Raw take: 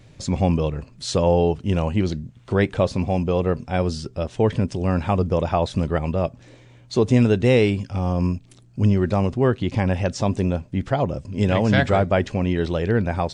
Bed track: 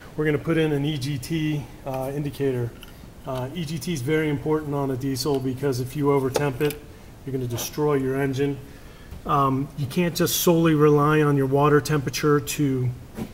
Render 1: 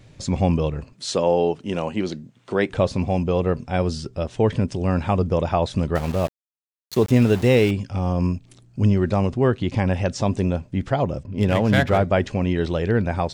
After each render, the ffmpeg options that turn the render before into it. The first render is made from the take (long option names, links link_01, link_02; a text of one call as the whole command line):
ffmpeg -i in.wav -filter_complex "[0:a]asettb=1/sr,asplit=3[link_01][link_02][link_03];[link_01]atrim=end=0.934[link_04];[link_02]atrim=start=0.93:end=2.7,asetpts=PTS-STARTPTS,afade=type=in:duration=0.004:curve=qsin,afade=type=out:start_time=1.766:duration=0.004:curve=qsin,highpass=220[link_05];[link_03]atrim=start=2.696[link_06];[link_04][link_05]acrossfade=duration=0.004:curve1=hsin:curve2=qsin[link_07];[link_07][link_06]acrossfade=duration=0.004:curve1=qsin:curve2=hsin,asettb=1/sr,asplit=3[link_08][link_09][link_10];[link_08]atrim=end=5.954[link_11];[link_09]atrim=start=5.95:end=7.71,asetpts=PTS-STARTPTS,afade=type=in:duration=0.004:curve=qsin,afade=type=out:start_time=1.756:duration=0.004:curve=qsin,aeval=exprs='val(0)*gte(abs(val(0)),0.0335)':channel_layout=same[link_12];[link_10]atrim=start=7.706[link_13];[link_11][link_12]acrossfade=duration=0.004:curve1=hsin:curve2=qsin[link_14];[link_14][link_13]acrossfade=duration=0.004:curve1=qsin:curve2=hsin,asettb=1/sr,asplit=3[link_15][link_16][link_17];[link_15]atrim=end=11.234[link_18];[link_16]atrim=start=11.23:end=11.98,asetpts=PTS-STARTPTS,afade=type=in:duration=0.004:curve=qsin,afade=type=out:start_time=0.746:duration=0.004:curve=qsin,adynamicsmooth=sensitivity=6:basefreq=2300[link_19];[link_17]atrim=start=11.976[link_20];[link_18][link_19]acrossfade=duration=0.004:curve1=hsin:curve2=qsin[link_21];[link_21][link_20]acrossfade=duration=0.004:curve1=qsin:curve2=hsin" out.wav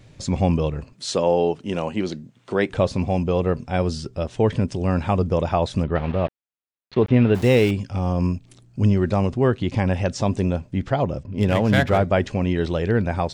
ffmpeg -i in.wav -filter_complex "[0:a]asplit=3[link_01][link_02][link_03];[link_01]afade=type=out:start_time=5.82:duration=0.02[link_04];[link_02]lowpass=frequency=3300:width=0.5412,lowpass=frequency=3300:width=1.3066,afade=type=in:start_time=5.82:duration=0.02,afade=type=out:start_time=7.34:duration=0.02[link_05];[link_03]afade=type=in:start_time=7.34:duration=0.02[link_06];[link_04][link_05][link_06]amix=inputs=3:normalize=0,asettb=1/sr,asplit=3[link_07][link_08][link_09];[link_07]atrim=end=10.804[link_10];[link_08]atrim=start=10.8:end=11.34,asetpts=PTS-STARTPTS,afade=type=in:duration=0.004:curve=qsin,afade=type=out:start_time=0.536:duration=0.004:curve=qsin,lowpass=7300[link_11];[link_09]atrim=start=11.336[link_12];[link_10][link_11]acrossfade=duration=0.004:curve1=hsin:curve2=qsin[link_13];[link_13][link_12]acrossfade=duration=0.004:curve1=qsin:curve2=hsin" out.wav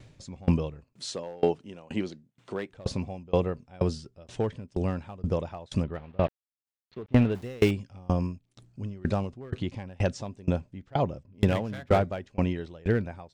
ffmpeg -i in.wav -af "volume=11dB,asoftclip=hard,volume=-11dB,aeval=exprs='val(0)*pow(10,-29*if(lt(mod(2.1*n/s,1),2*abs(2.1)/1000),1-mod(2.1*n/s,1)/(2*abs(2.1)/1000),(mod(2.1*n/s,1)-2*abs(2.1)/1000)/(1-2*abs(2.1)/1000))/20)':channel_layout=same" out.wav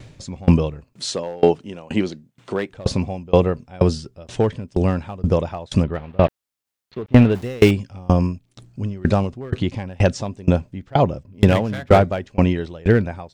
ffmpeg -i in.wav -af "volume=10dB,alimiter=limit=-2dB:level=0:latency=1" out.wav